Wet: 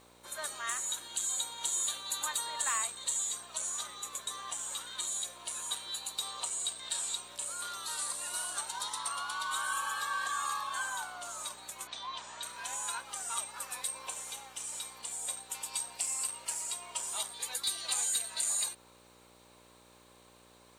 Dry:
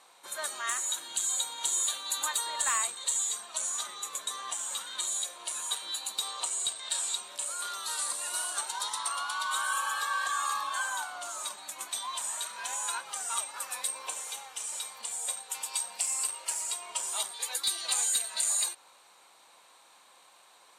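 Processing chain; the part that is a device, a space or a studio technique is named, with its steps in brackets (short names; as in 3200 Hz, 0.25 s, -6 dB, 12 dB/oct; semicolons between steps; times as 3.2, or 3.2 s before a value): video cassette with head-switching buzz (buzz 60 Hz, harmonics 10, -60 dBFS 0 dB/oct; white noise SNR 36 dB); 11.87–12.43 LPF 5300 Hz 24 dB/oct; gain -3.5 dB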